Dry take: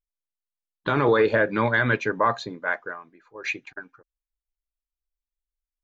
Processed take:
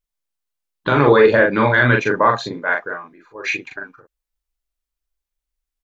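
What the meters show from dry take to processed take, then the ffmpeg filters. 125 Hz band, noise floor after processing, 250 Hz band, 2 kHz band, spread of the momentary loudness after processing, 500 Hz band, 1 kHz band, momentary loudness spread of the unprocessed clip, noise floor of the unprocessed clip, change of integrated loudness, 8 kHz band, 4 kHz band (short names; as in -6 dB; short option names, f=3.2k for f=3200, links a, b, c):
+8.5 dB, -85 dBFS, +7.5 dB, +7.5 dB, 18 LU, +8.0 dB, +7.0 dB, 18 LU, under -85 dBFS, +8.0 dB, n/a, +7.0 dB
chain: -filter_complex "[0:a]asplit=2[a][b];[b]adelay=41,volume=-3dB[c];[a][c]amix=inputs=2:normalize=0,volume=5.5dB"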